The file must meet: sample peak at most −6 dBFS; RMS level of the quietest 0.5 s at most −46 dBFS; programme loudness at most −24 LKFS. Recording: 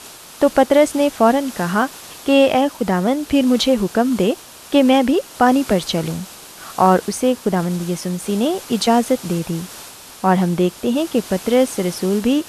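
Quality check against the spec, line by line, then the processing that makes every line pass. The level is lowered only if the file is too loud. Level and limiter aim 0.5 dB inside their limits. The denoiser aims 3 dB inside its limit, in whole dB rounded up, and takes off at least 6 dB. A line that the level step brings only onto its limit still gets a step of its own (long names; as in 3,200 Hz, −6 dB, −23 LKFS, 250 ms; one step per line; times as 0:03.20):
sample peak −2.0 dBFS: out of spec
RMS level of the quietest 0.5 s −38 dBFS: out of spec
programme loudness −17.5 LKFS: out of spec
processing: broadband denoise 6 dB, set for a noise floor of −38 dBFS
level −7 dB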